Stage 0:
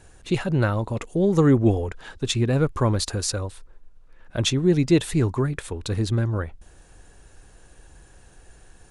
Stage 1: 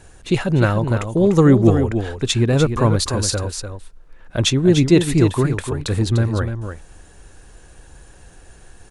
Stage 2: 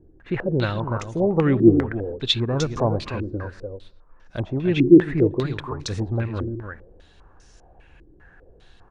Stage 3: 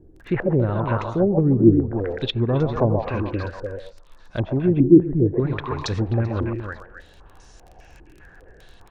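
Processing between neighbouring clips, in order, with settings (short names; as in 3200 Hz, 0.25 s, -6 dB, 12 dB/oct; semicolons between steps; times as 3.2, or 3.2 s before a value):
echo 0.297 s -8 dB; gain +5 dB
on a send at -21 dB: reverb RT60 0.80 s, pre-delay 0.107 s; on the sum: stepped low-pass 5 Hz 330–5700 Hz; gain -8 dB
crackle 18/s -39 dBFS; delay with a stepping band-pass 0.129 s, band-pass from 790 Hz, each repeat 1.4 oct, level -2.5 dB; treble ducked by the level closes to 310 Hz, closed at -15 dBFS; gain +3 dB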